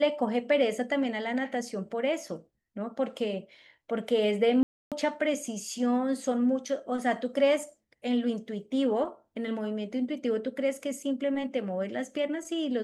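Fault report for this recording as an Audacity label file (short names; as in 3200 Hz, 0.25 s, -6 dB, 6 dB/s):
4.630000	4.920000	gap 0.287 s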